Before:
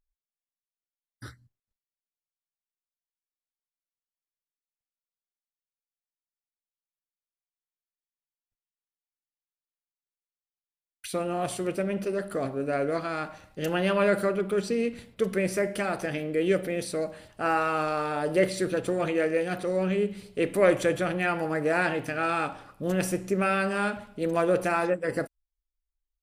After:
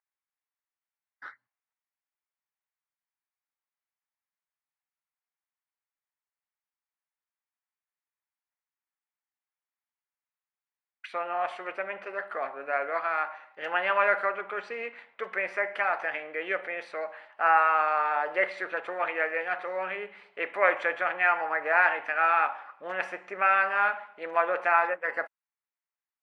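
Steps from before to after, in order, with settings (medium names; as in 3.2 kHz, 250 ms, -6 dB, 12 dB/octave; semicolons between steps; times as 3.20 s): Chebyshev band-pass 830–2100 Hz, order 2; trim +6.5 dB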